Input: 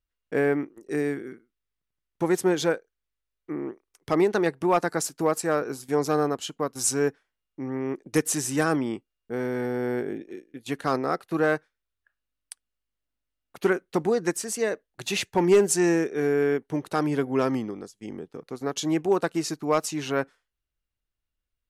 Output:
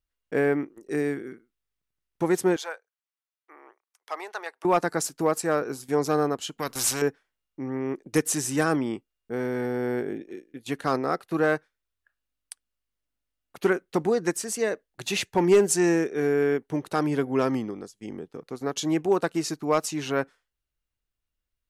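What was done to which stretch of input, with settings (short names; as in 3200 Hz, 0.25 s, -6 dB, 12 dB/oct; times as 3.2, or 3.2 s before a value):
2.56–4.65 ladder high-pass 620 Hz, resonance 25%
6.58–7.02 spectral compressor 2:1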